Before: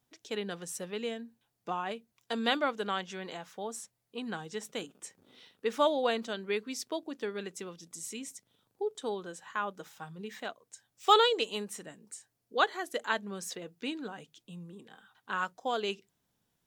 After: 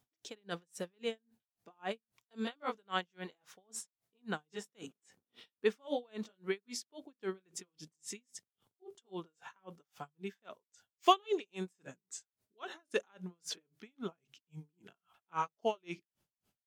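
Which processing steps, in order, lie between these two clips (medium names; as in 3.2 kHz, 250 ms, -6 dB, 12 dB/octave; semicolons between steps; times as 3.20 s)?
pitch bend over the whole clip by -2.5 st starting unshifted; logarithmic tremolo 3.7 Hz, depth 40 dB; trim +2.5 dB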